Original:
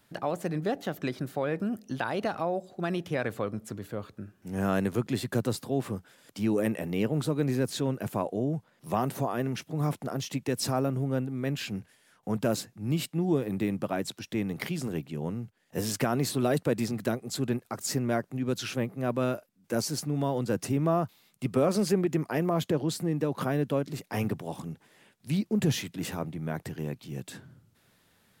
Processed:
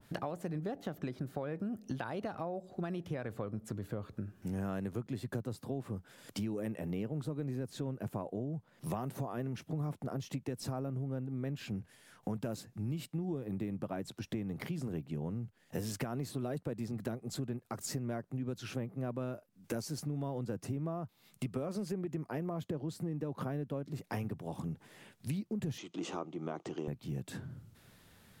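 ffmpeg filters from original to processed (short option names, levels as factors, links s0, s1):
-filter_complex "[0:a]asettb=1/sr,asplit=3[s0][s1][s2];[s0]atrim=end=25.784[s3];[s1]atrim=start=25.78:end=26.88,asetpts=PTS-STARTPTS,afade=t=in:d=0.004:c=qsin,afade=t=out:st=1.096:d=0.004:c=qsin,highpass=320,equalizer=f=340:t=q:w=4:g=9,equalizer=f=760:t=q:w=4:g=3,equalizer=f=1200:t=q:w=4:g=8,equalizer=f=1700:t=q:w=4:g=-9,equalizer=f=3100:t=q:w=4:g=7,equalizer=f=6400:t=q:w=4:g=7,lowpass=f=7400:w=0.5412,lowpass=f=7400:w=1.3066[s4];[s2]atrim=start=26.876[s5];[s3][s4]acrossfade=d=0.004:c1=hsin:c2=qsin[s6];[s6][s5]acrossfade=d=0.004:c1=qsin:c2=hsin,lowshelf=f=130:g=9,acompressor=threshold=0.0126:ratio=6,adynamicequalizer=threshold=0.001:dfrequency=1600:dqfactor=0.7:tfrequency=1600:tqfactor=0.7:attack=5:release=100:ratio=0.375:range=3:mode=cutabove:tftype=highshelf,volume=1.33"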